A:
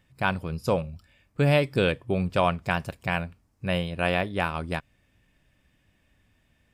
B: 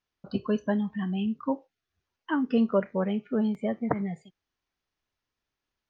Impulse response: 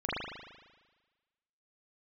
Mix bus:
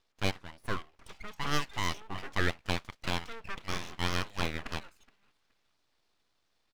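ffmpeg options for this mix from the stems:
-filter_complex "[0:a]lowpass=3.8k,volume=-2dB[a];[1:a]asoftclip=type=tanh:threshold=-27.5dB,adelay=750,volume=-0.5dB,asplit=2[b][c];[c]volume=-22.5dB,aecho=0:1:421|842|1263|1684:1|0.27|0.0729|0.0197[d];[a][b][d]amix=inputs=3:normalize=0,highpass=630,aeval=exprs='abs(val(0))':c=same"

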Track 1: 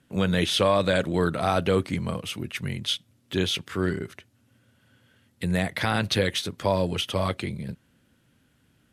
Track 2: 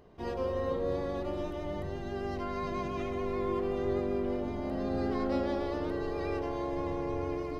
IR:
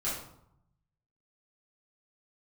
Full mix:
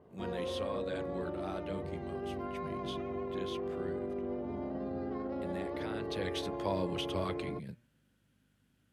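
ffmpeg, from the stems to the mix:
-filter_complex "[0:a]bandreject=f=118.2:t=h:w=4,bandreject=f=236.4:t=h:w=4,bandreject=f=354.6:t=h:w=4,bandreject=f=472.8:t=h:w=4,bandreject=f=591:t=h:w=4,bandreject=f=709.2:t=h:w=4,bandreject=f=827.4:t=h:w=4,bandreject=f=945.6:t=h:w=4,bandreject=f=1.0638k:t=h:w=4,bandreject=f=1.182k:t=h:w=4,bandreject=f=1.3002k:t=h:w=4,bandreject=f=1.4184k:t=h:w=4,bandreject=f=1.5366k:t=h:w=4,bandreject=f=1.6548k:t=h:w=4,bandreject=f=1.773k:t=h:w=4,bandreject=f=1.8912k:t=h:w=4,bandreject=f=2.0094k:t=h:w=4,bandreject=f=2.1276k:t=h:w=4,bandreject=f=2.2458k:t=h:w=4,bandreject=f=2.364k:t=h:w=4,bandreject=f=2.4822k:t=h:w=4,aeval=exprs='val(0)+0.00112*(sin(2*PI*50*n/s)+sin(2*PI*2*50*n/s)/2+sin(2*PI*3*50*n/s)/3+sin(2*PI*4*50*n/s)/4+sin(2*PI*5*50*n/s)/5)':c=same,volume=-10dB,afade=t=in:st=6.08:d=0.39:silence=0.354813[a];[1:a]lowpass=f=1.2k:p=1,alimiter=level_in=5.5dB:limit=-24dB:level=0:latency=1:release=20,volume=-5.5dB,volume=-1dB[b];[a][b]amix=inputs=2:normalize=0,highpass=91,adynamicequalizer=threshold=0.00112:dfrequency=5200:dqfactor=0.7:tfrequency=5200:tqfactor=0.7:attack=5:release=100:ratio=0.375:range=2.5:mode=cutabove:tftype=highshelf"

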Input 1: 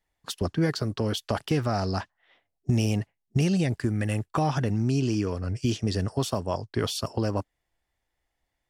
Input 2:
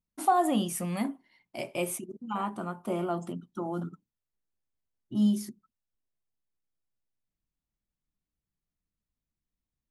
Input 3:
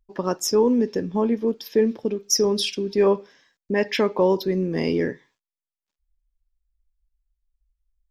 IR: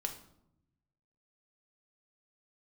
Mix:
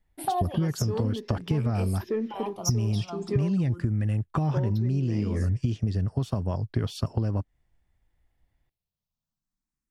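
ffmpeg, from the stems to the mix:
-filter_complex "[0:a]bass=f=250:g=13,treble=f=4k:g=-7,volume=-0.5dB,asplit=2[a][b];[1:a]asplit=2[c][d];[d]afreqshift=0.48[e];[c][e]amix=inputs=2:normalize=1,volume=2dB[f];[2:a]acontrast=84,adelay=350,volume=-13.5dB,asplit=3[g][h][i];[g]atrim=end=3.76,asetpts=PTS-STARTPTS,afade=t=out:st=3.756:d=0.004:c=hsin[j];[h]atrim=start=3.76:end=4.47,asetpts=PTS-STARTPTS,volume=0[k];[i]atrim=start=4.47,asetpts=PTS-STARTPTS,afade=t=in:d=0.004:c=hsin[l];[j][k][l]concat=n=3:v=0:a=1[m];[b]apad=whole_len=436831[n];[f][n]sidechaincompress=threshold=-17dB:ratio=8:attack=22:release=559[o];[a][o][m]amix=inputs=3:normalize=0,acompressor=threshold=-23dB:ratio=6"

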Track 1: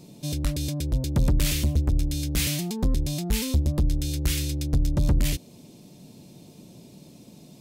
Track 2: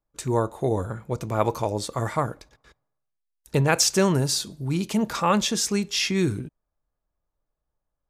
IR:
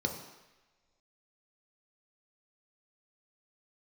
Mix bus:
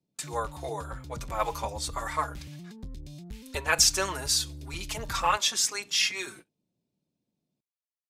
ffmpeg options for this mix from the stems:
-filter_complex "[0:a]highshelf=f=7.7k:g=-10.5,acrossover=split=170|400|1800|6800[a][b][c][d][e];[a]acompressor=threshold=-28dB:ratio=4[f];[b]acompressor=threshold=-40dB:ratio=4[g];[c]acompressor=threshold=-51dB:ratio=4[h];[d]acompressor=threshold=-46dB:ratio=4[i];[e]acompressor=threshold=-53dB:ratio=4[j];[f][g][h][i][j]amix=inputs=5:normalize=0,volume=-11dB[k];[1:a]highpass=900,asplit=2[l][m];[m]adelay=4.4,afreqshift=-2.6[n];[l][n]amix=inputs=2:normalize=1,volume=3dB[o];[k][o]amix=inputs=2:normalize=0,agate=range=-23dB:threshold=-48dB:ratio=16:detection=peak"

